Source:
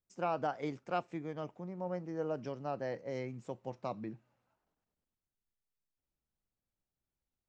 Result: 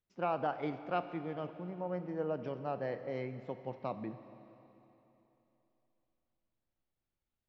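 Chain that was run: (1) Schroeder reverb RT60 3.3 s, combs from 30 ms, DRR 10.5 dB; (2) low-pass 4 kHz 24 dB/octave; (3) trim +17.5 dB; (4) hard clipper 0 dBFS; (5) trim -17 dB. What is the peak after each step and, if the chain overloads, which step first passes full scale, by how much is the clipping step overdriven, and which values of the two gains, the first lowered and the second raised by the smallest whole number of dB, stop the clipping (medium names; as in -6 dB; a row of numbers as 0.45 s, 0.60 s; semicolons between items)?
-21.5 dBFS, -21.5 dBFS, -4.0 dBFS, -4.0 dBFS, -21.0 dBFS; nothing clips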